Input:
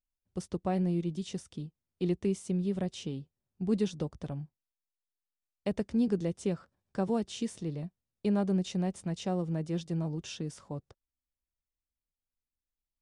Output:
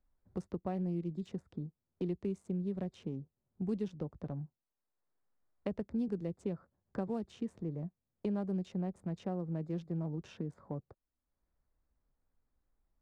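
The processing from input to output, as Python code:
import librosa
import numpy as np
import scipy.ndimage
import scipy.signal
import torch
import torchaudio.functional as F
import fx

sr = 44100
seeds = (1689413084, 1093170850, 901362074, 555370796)

y = fx.wiener(x, sr, points=15)
y = fx.high_shelf(y, sr, hz=2700.0, db=-9.5)
y = fx.band_squash(y, sr, depth_pct=70)
y = y * librosa.db_to_amplitude(-5.5)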